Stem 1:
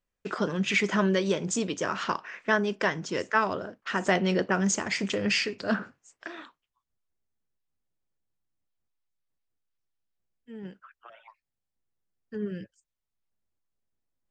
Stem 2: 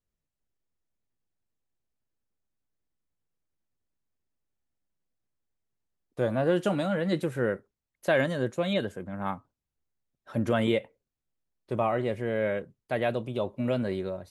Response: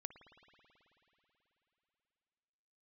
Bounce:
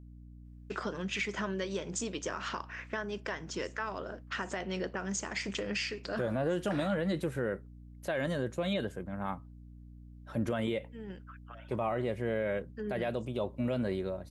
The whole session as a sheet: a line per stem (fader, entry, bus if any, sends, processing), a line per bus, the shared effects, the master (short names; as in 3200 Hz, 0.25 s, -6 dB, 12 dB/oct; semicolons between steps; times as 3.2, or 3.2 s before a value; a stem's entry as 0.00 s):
-1.0 dB, 0.45 s, no send, low shelf 130 Hz -11.5 dB; compressor 3:1, threshold -33 dBFS, peak gain reduction 11.5 dB
-2.5 dB, 0.00 s, no send, hum 60 Hz, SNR 16 dB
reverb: off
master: limiter -23 dBFS, peak gain reduction 8.5 dB